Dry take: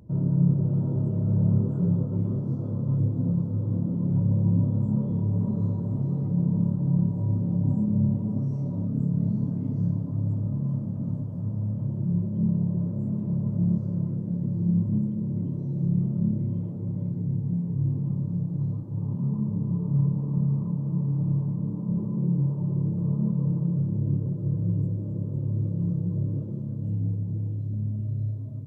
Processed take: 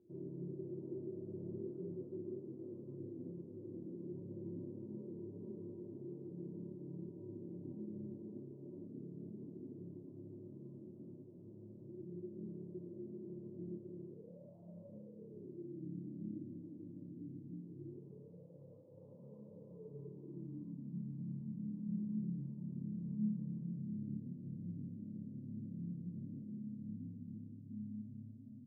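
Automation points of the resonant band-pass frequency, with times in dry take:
resonant band-pass, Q 12
0:14.04 360 Hz
0:14.58 680 Hz
0:15.87 300 Hz
0:17.60 300 Hz
0:18.43 510 Hz
0:19.71 510 Hz
0:20.97 230 Hz

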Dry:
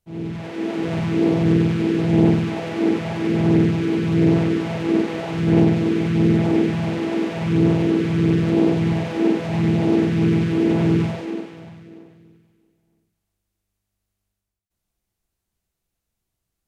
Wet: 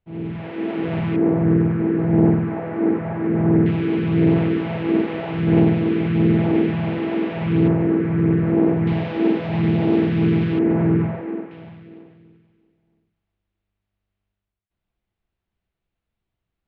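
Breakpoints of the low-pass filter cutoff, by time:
low-pass filter 24 dB per octave
3,100 Hz
from 0:01.16 1,800 Hz
from 0:03.66 3,200 Hz
from 0:07.68 2,000 Hz
from 0:08.87 3,700 Hz
from 0:10.59 2,000 Hz
from 0:11.51 3,400 Hz

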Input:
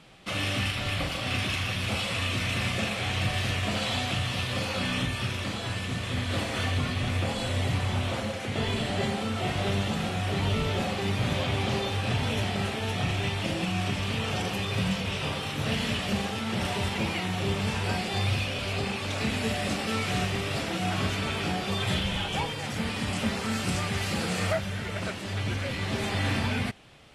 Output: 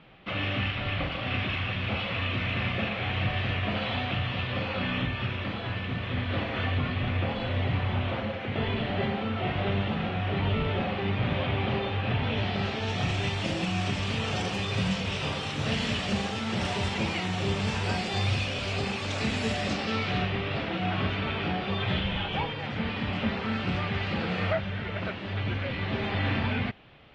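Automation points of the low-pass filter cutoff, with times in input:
low-pass filter 24 dB per octave
0:12.19 3,200 Hz
0:13.10 7,600 Hz
0:19.51 7,600 Hz
0:20.32 3,500 Hz

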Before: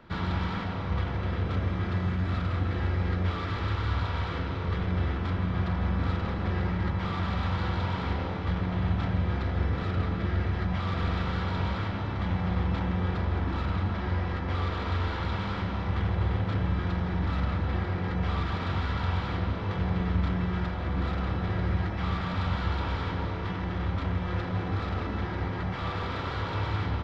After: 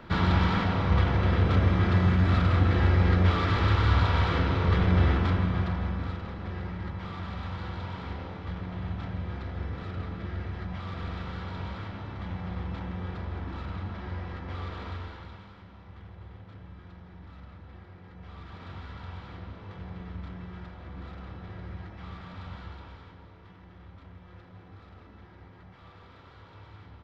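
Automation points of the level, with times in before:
0:05.15 +6 dB
0:06.22 −7 dB
0:14.86 −7 dB
0:15.55 −19 dB
0:18.12 −19 dB
0:18.67 −12.5 dB
0:22.58 −12.5 dB
0:23.19 −19.5 dB

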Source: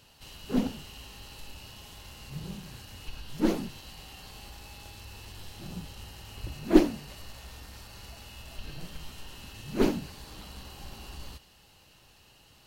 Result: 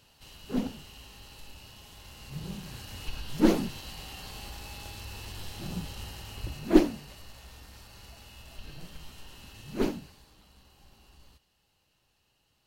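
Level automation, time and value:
0:01.90 −3 dB
0:02.97 +4 dB
0:06.08 +4 dB
0:07.22 −3.5 dB
0:09.83 −3.5 dB
0:10.36 −14 dB

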